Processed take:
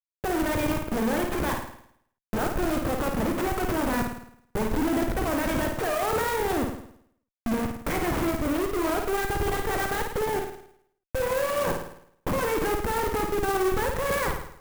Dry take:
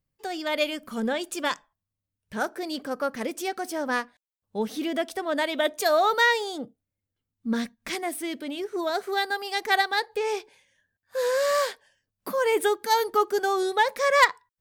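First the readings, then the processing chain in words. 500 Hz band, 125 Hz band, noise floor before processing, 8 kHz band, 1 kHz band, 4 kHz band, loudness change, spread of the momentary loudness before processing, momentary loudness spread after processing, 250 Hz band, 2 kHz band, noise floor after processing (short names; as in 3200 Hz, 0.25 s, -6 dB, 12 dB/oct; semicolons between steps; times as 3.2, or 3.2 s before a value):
-1.0 dB, n/a, under -85 dBFS, +0.5 dB, -2.5 dB, -7.0 dB, -1.5 dB, 12 LU, 7 LU, +4.5 dB, -4.5 dB, -83 dBFS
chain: bin magnitudes rounded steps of 30 dB; in parallel at +1 dB: compressor 10:1, threshold -31 dBFS, peak gain reduction 17.5 dB; on the sum: Schmitt trigger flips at -28.5 dBFS; air absorption 360 m; on a send: flutter echo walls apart 9.2 m, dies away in 0.67 s; on the sum: clock jitter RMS 0.043 ms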